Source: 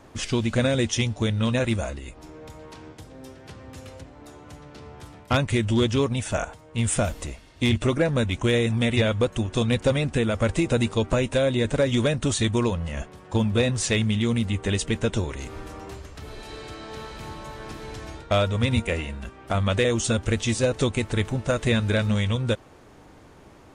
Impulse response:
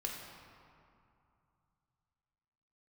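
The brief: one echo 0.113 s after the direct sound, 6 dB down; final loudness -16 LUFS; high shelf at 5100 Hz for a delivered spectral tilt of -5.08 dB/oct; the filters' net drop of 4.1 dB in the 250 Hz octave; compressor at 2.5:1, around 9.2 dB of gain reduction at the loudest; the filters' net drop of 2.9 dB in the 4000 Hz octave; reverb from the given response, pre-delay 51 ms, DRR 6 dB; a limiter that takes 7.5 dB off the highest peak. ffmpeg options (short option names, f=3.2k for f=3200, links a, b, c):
-filter_complex "[0:a]equalizer=f=250:t=o:g=-5,equalizer=f=4k:t=o:g=-5.5,highshelf=f=5.1k:g=5,acompressor=threshold=-33dB:ratio=2.5,alimiter=level_in=2dB:limit=-24dB:level=0:latency=1,volume=-2dB,aecho=1:1:113:0.501,asplit=2[a][b];[1:a]atrim=start_sample=2205,adelay=51[c];[b][c]afir=irnorm=-1:irlink=0,volume=-7dB[d];[a][d]amix=inputs=2:normalize=0,volume=18.5dB"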